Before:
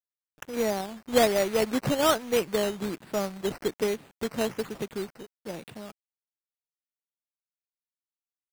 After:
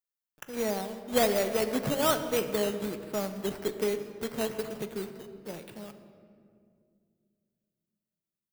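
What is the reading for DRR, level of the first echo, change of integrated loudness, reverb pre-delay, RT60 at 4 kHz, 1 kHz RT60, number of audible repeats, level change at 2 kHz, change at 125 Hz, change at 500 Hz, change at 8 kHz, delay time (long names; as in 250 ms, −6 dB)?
8.0 dB, no echo audible, −2.5 dB, 5 ms, 1.3 s, 1.8 s, no echo audible, −3.0 dB, −2.5 dB, −3.0 dB, −1.5 dB, no echo audible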